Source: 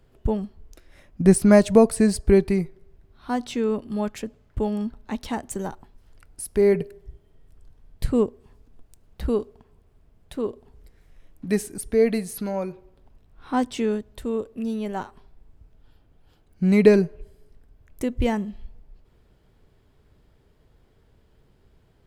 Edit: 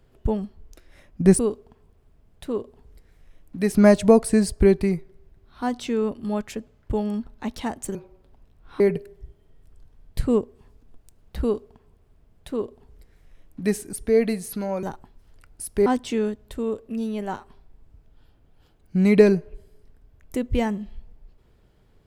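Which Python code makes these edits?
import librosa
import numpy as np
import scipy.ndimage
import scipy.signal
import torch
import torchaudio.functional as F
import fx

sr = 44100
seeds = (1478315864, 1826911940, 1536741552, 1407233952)

y = fx.edit(x, sr, fx.swap(start_s=5.62, length_s=1.03, other_s=12.68, other_length_s=0.85),
    fx.duplicate(start_s=9.28, length_s=2.33, to_s=1.39), tone=tone)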